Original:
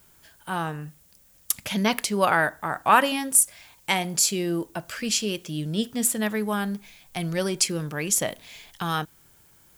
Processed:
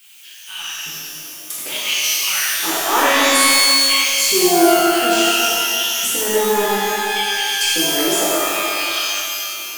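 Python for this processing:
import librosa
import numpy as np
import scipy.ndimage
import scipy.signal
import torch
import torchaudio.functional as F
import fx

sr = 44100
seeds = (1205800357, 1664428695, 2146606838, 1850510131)

y = fx.filter_lfo_highpass(x, sr, shape='square', hz=0.58, low_hz=350.0, high_hz=2700.0, q=4.4)
y = fx.power_curve(y, sr, exponent=0.7)
y = fx.rev_shimmer(y, sr, seeds[0], rt60_s=2.4, semitones=12, shimmer_db=-2, drr_db=-8.5)
y = y * librosa.db_to_amplitude(-10.0)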